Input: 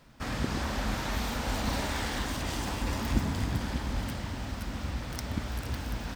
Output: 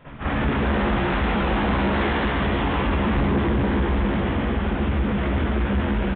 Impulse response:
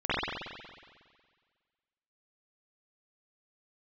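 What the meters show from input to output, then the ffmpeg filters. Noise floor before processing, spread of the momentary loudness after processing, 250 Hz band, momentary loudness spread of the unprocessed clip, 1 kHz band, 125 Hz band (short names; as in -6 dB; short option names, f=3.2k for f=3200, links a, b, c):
-38 dBFS, 2 LU, +12.5 dB, 6 LU, +11.0 dB, +9.5 dB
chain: -filter_complex "[0:a]areverse,acompressor=mode=upward:threshold=-36dB:ratio=2.5,areverse,lowpass=3.1k,asplit=6[a][b][c][d][e][f];[b]adelay=140,afreqshift=140,volume=-4dB[g];[c]adelay=280,afreqshift=280,volume=-11.5dB[h];[d]adelay=420,afreqshift=420,volume=-19.1dB[i];[e]adelay=560,afreqshift=560,volume=-26.6dB[j];[f]adelay=700,afreqshift=700,volume=-34.1dB[k];[a][g][h][i][j][k]amix=inputs=6:normalize=0[l];[1:a]atrim=start_sample=2205,atrim=end_sample=3969[m];[l][m]afir=irnorm=-1:irlink=0,aresample=8000,asoftclip=type=tanh:threshold=-17dB,aresample=44100,alimiter=limit=-22.5dB:level=0:latency=1:release=328,acontrast=71"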